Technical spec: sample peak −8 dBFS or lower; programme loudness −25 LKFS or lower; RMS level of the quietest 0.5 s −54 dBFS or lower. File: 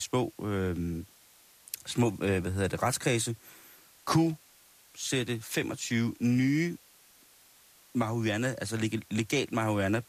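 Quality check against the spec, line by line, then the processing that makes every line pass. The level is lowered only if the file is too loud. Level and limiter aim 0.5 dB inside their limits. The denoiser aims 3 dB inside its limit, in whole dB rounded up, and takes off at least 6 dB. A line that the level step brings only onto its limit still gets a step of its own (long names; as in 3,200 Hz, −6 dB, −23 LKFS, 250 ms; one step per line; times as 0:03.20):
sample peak −12.5 dBFS: in spec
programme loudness −30.5 LKFS: in spec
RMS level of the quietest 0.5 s −59 dBFS: in spec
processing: no processing needed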